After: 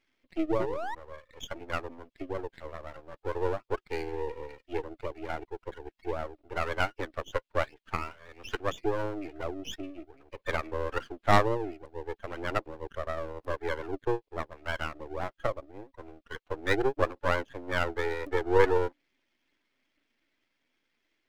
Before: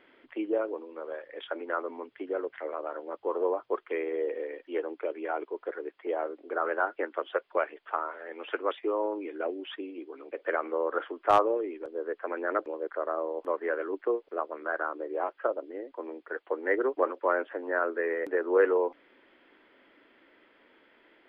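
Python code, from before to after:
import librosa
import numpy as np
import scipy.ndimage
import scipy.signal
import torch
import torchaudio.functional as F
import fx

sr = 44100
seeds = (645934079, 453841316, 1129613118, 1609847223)

y = fx.bin_expand(x, sr, power=1.5)
y = fx.high_shelf(y, sr, hz=2500.0, db=7.5)
y = fx.spec_paint(y, sr, seeds[0], shape='rise', start_s=0.59, length_s=0.36, low_hz=340.0, high_hz=1000.0, level_db=-35.0)
y = np.maximum(y, 0.0)
y = fx.dynamic_eq(y, sr, hz=310.0, q=1.4, threshold_db=-52.0, ratio=4.0, max_db=5)
y = y * 10.0 ** (4.5 / 20.0)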